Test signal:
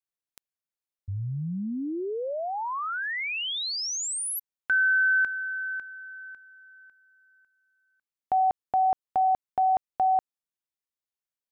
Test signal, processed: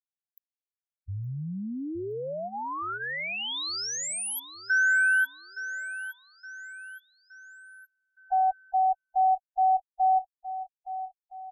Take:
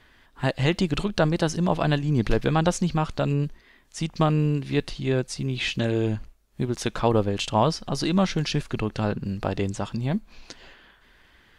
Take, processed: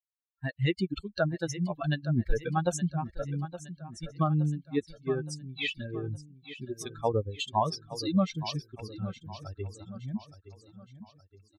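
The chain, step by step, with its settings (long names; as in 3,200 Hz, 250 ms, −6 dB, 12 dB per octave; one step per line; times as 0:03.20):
spectral dynamics exaggerated over time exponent 3
repeating echo 868 ms, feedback 45%, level −13.5 dB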